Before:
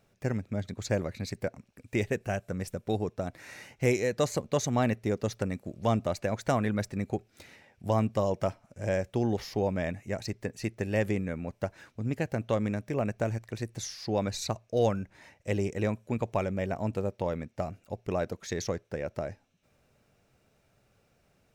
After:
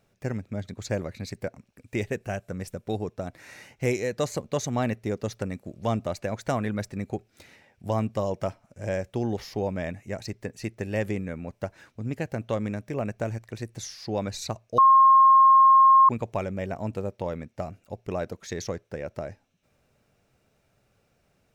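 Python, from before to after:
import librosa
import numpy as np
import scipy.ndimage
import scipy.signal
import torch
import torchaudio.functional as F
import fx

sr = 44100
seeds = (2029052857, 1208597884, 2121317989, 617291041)

y = fx.edit(x, sr, fx.bleep(start_s=14.78, length_s=1.31, hz=1070.0, db=-12.0), tone=tone)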